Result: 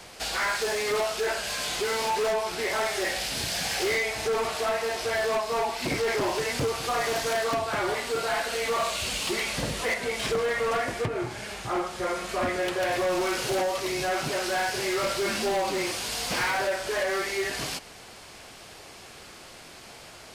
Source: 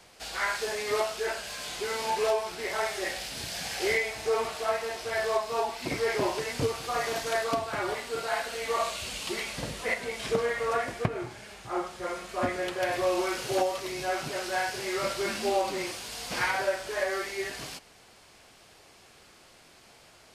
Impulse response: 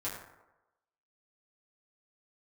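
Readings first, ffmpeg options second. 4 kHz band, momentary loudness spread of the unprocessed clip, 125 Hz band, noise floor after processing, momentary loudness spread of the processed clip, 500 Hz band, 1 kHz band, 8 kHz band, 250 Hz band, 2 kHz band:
+5.0 dB, 7 LU, +2.5 dB, −47 dBFS, 18 LU, +2.5 dB, +2.5 dB, +5.0 dB, +3.0 dB, +3.5 dB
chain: -filter_complex "[0:a]asplit=2[link_01][link_02];[link_02]acompressor=threshold=-39dB:ratio=6,volume=2.5dB[link_03];[link_01][link_03]amix=inputs=2:normalize=0,asoftclip=type=hard:threshold=-25dB,volume=2dB"

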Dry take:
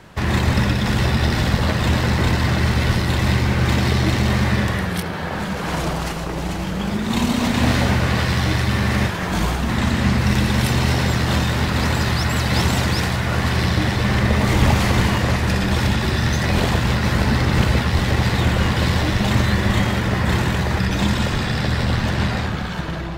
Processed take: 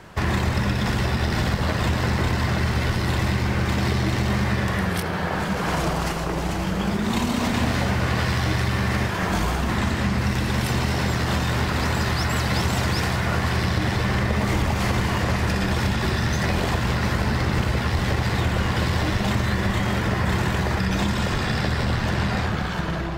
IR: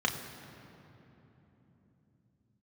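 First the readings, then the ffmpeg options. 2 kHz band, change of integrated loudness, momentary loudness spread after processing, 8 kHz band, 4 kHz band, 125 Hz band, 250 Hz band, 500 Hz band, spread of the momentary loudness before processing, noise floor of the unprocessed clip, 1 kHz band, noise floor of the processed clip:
−3.0 dB, −4.0 dB, 2 LU, −3.5 dB, −4.5 dB, −4.5 dB, −4.0 dB, −2.5 dB, 5 LU, −25 dBFS, −2.0 dB, −26 dBFS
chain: -filter_complex "[0:a]acompressor=threshold=-18dB:ratio=6,asplit=2[link_01][link_02];[1:a]atrim=start_sample=2205,asetrate=61740,aresample=44100[link_03];[link_02][link_03]afir=irnorm=-1:irlink=0,volume=-19dB[link_04];[link_01][link_04]amix=inputs=2:normalize=0"

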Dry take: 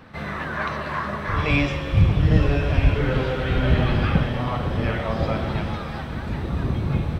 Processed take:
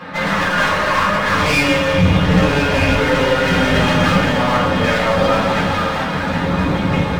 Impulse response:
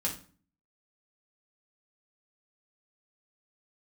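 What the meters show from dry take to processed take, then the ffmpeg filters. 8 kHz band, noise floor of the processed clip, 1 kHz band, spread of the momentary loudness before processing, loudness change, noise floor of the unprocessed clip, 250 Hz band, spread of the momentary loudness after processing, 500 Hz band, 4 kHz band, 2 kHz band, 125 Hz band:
can't be measured, −20 dBFS, +12.0 dB, 10 LU, +7.5 dB, −31 dBFS, +8.5 dB, 4 LU, +10.5 dB, +13.5 dB, +12.0 dB, +2.0 dB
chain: -filter_complex "[0:a]asplit=2[link_01][link_02];[link_02]highpass=frequency=720:poles=1,volume=24dB,asoftclip=type=tanh:threshold=-4dB[link_03];[link_01][link_03]amix=inputs=2:normalize=0,lowpass=frequency=2800:poles=1,volume=-6dB,aeval=exprs='clip(val(0),-1,0.0531)':channel_layout=same[link_04];[1:a]atrim=start_sample=2205[link_05];[link_04][link_05]afir=irnorm=-1:irlink=0,volume=-2dB"

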